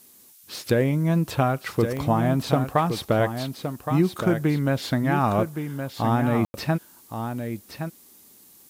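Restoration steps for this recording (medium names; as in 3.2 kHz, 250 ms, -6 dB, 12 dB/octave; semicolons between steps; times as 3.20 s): de-click; room tone fill 6.45–6.54 s; noise reduction 17 dB, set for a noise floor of -52 dBFS; inverse comb 1118 ms -8 dB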